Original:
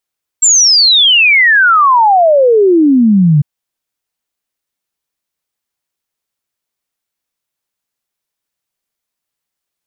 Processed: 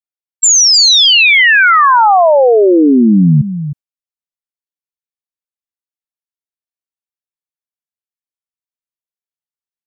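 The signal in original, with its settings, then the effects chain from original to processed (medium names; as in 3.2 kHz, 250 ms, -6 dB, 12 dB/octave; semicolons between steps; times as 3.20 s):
log sweep 7.6 kHz -> 140 Hz 3.00 s -4.5 dBFS
gate with hold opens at -5 dBFS; delay 312 ms -11 dB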